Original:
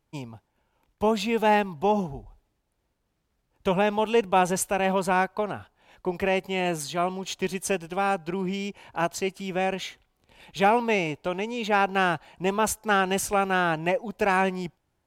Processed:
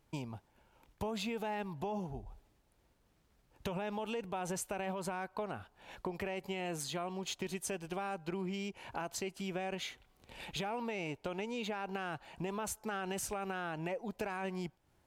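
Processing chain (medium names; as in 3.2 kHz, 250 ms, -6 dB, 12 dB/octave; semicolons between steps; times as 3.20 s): peak limiter -20 dBFS, peak gain reduction 11 dB; compression 3:1, threshold -44 dBFS, peak gain reduction 14.5 dB; trim +3.5 dB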